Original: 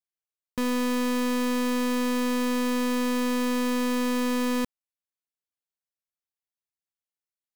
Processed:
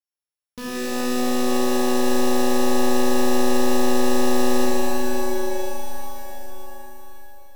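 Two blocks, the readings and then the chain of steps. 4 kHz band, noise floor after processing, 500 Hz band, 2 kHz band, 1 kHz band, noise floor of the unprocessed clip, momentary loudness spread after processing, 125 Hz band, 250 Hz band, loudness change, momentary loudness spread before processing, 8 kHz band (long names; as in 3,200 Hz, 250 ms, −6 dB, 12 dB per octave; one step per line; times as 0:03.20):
+5.0 dB, below −85 dBFS, +8.5 dB, +3.0 dB, +7.0 dB, below −85 dBFS, 16 LU, can't be measured, +2.5 dB, +4.0 dB, 2 LU, +8.0 dB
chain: samples sorted by size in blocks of 8 samples
reverb with rising layers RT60 3.8 s, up +7 semitones, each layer −2 dB, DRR −7 dB
level −6.5 dB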